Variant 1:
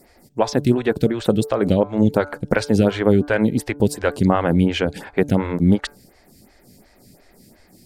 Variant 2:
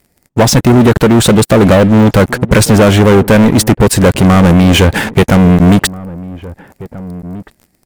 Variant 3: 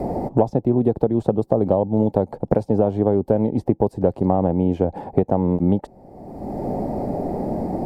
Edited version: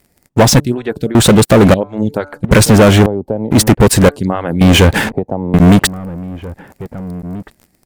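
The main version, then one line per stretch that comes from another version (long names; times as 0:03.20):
2
0:00.60–0:01.15: punch in from 1
0:01.74–0:02.44: punch in from 1
0:03.06–0:03.51: punch in from 3
0:04.09–0:04.61: punch in from 1
0:05.12–0:05.54: punch in from 3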